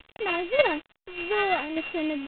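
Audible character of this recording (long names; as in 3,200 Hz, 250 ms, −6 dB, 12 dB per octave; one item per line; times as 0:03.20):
a buzz of ramps at a fixed pitch in blocks of 16 samples
tremolo saw down 1.7 Hz, depth 55%
a quantiser's noise floor 8 bits, dither none
IMA ADPCM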